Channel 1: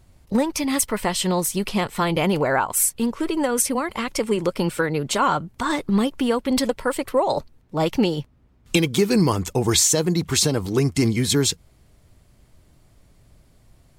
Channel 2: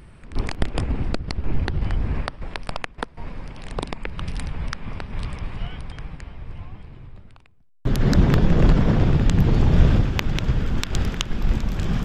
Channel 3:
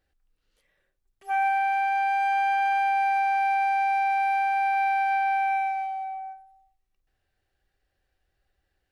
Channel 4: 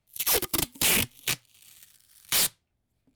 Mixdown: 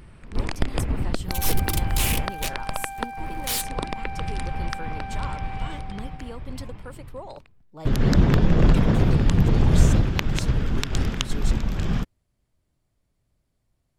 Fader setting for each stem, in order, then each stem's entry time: -18.5 dB, -1.0 dB, -13.0 dB, -3.5 dB; 0.00 s, 0.00 s, 0.00 s, 1.15 s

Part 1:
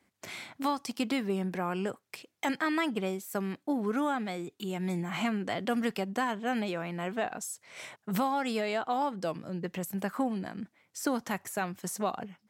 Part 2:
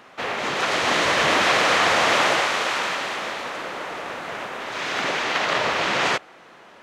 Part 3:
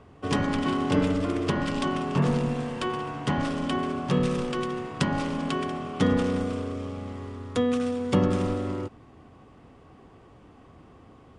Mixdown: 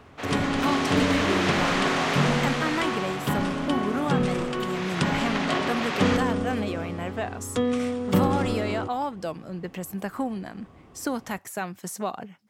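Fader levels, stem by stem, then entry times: +1.5 dB, -8.0 dB, 0.0 dB; 0.00 s, 0.00 s, 0.00 s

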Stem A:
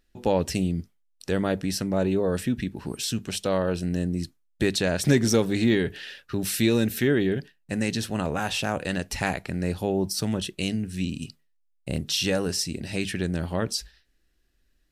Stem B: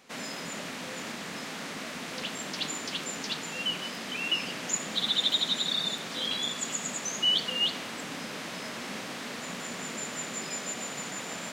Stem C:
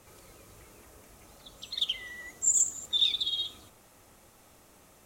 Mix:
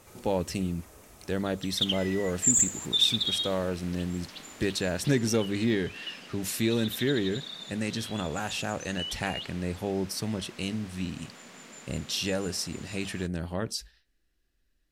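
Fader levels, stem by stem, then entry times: -5.0 dB, -11.5 dB, +2.0 dB; 0.00 s, 1.75 s, 0.00 s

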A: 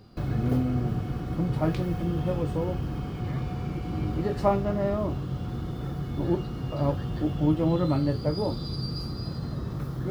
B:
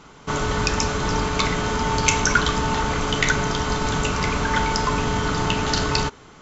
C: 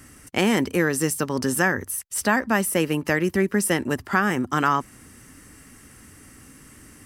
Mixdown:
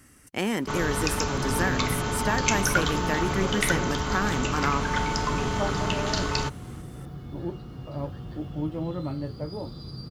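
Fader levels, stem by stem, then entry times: -7.0 dB, -5.5 dB, -7.0 dB; 1.15 s, 0.40 s, 0.00 s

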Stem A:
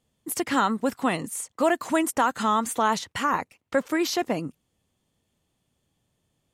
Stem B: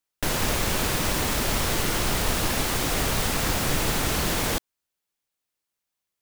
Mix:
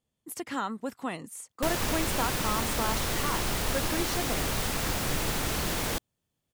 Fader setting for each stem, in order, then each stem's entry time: -9.5 dB, -5.0 dB; 0.00 s, 1.40 s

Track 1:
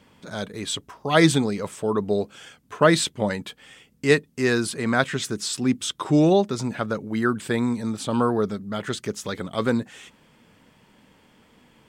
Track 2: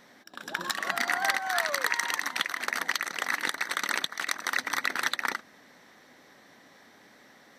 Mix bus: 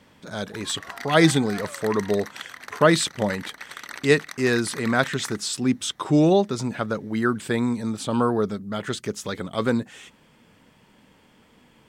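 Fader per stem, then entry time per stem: 0.0 dB, -8.5 dB; 0.00 s, 0.00 s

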